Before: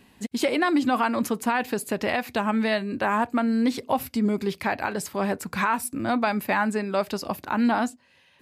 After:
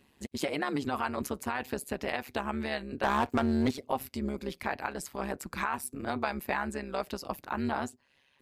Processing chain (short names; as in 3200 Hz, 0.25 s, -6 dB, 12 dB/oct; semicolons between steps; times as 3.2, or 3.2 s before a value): harmonic-percussive split percussive +4 dB; 3.03–3.71 sample leveller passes 2; AM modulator 140 Hz, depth 75%; gain -7 dB